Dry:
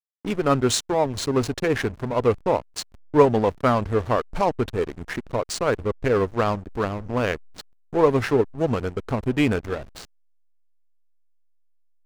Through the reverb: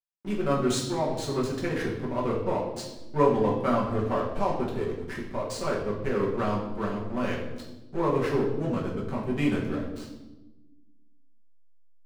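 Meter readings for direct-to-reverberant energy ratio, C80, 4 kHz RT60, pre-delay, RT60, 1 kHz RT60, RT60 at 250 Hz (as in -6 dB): -5.0 dB, 7.5 dB, 0.80 s, 5 ms, 1.1 s, 0.90 s, 1.9 s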